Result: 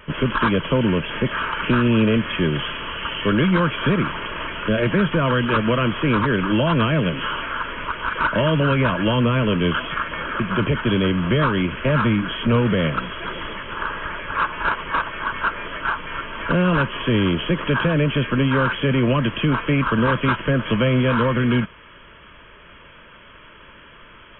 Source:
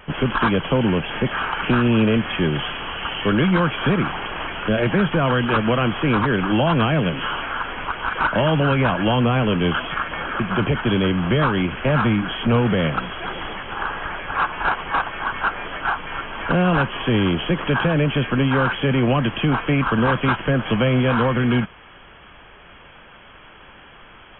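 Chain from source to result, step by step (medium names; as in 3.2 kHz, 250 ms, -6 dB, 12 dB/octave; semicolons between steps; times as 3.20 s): Butterworth band-stop 770 Hz, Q 3.8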